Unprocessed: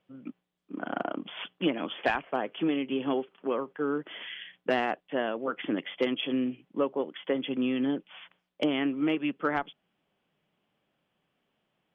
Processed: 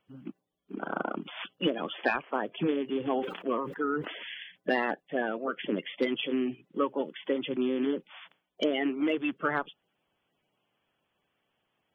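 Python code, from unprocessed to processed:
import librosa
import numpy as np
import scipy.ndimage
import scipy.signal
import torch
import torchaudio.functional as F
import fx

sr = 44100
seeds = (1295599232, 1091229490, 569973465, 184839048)

y = fx.spec_quant(x, sr, step_db=30)
y = fx.sustainer(y, sr, db_per_s=75.0, at=(3.18, 4.31))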